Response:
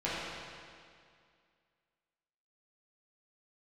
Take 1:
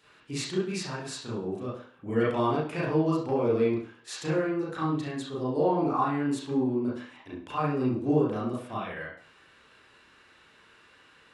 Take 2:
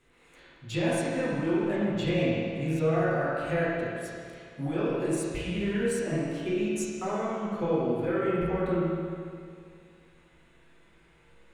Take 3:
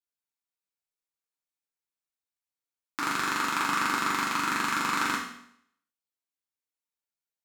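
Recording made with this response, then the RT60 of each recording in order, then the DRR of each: 2; 0.45 s, 2.2 s, 0.70 s; -8.0 dB, -10.5 dB, -6.5 dB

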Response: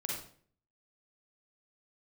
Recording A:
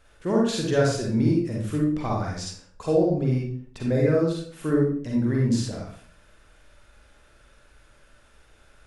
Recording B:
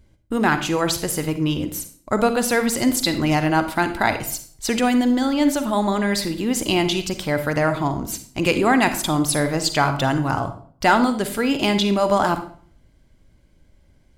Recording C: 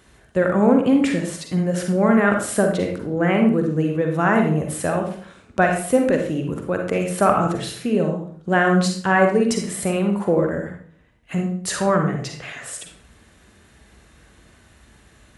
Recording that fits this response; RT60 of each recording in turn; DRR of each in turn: A; 0.50 s, 0.50 s, 0.50 s; -3.0 dB, 8.5 dB, 2.5 dB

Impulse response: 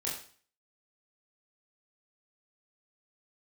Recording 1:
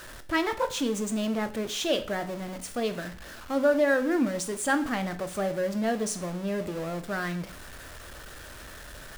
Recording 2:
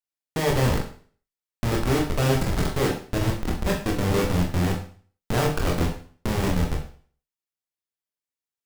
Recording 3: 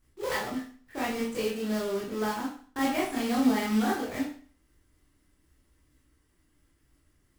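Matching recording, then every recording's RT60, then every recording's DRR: 3; 0.45 s, 0.45 s, 0.45 s; 9.0 dB, -0.5 dB, -6.0 dB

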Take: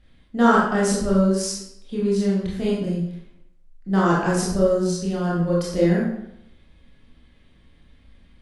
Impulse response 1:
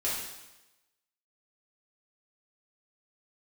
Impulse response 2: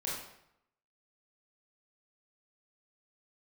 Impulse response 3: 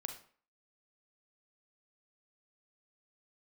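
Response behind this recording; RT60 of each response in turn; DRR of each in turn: 2; 1.0 s, 0.75 s, 0.45 s; -8.5 dB, -6.5 dB, 5.0 dB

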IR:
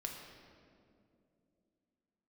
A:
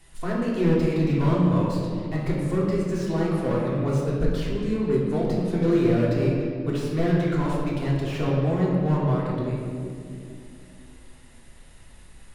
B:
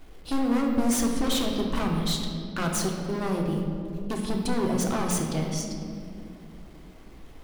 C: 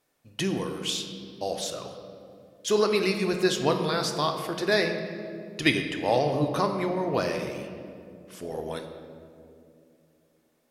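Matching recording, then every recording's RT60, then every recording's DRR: B; 2.6 s, 2.5 s, 2.7 s; -5.5 dB, 0.5 dB, 4.5 dB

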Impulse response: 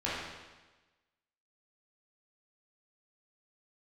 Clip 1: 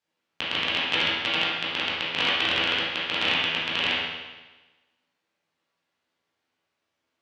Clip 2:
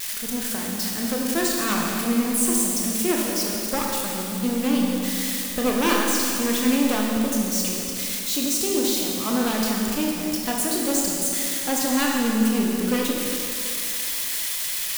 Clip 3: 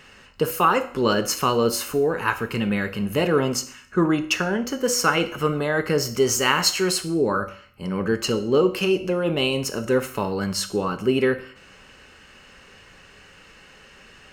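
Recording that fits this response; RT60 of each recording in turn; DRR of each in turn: 1; 1.2 s, 2.7 s, 0.55 s; -9.5 dB, -2.5 dB, 8.0 dB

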